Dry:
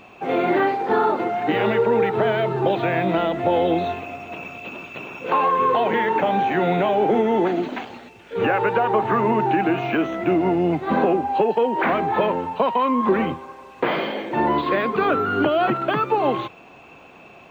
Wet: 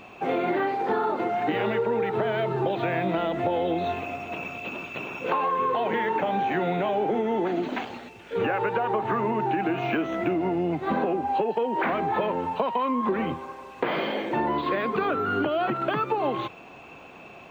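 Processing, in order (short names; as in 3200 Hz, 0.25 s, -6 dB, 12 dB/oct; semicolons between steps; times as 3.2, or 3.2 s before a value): compressor 4:1, threshold -23 dBFS, peak gain reduction 8.5 dB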